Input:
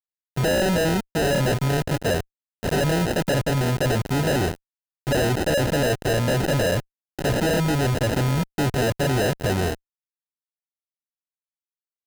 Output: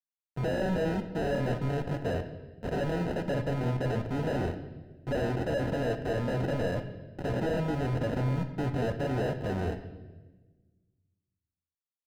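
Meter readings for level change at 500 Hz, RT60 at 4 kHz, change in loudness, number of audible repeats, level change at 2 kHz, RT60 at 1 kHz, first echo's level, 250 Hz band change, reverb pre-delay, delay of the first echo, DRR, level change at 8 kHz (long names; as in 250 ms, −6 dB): −8.0 dB, 1.1 s, −9.0 dB, no echo audible, −12.0 dB, 1.0 s, no echo audible, −7.5 dB, 4 ms, no echo audible, 6.0 dB, −22.5 dB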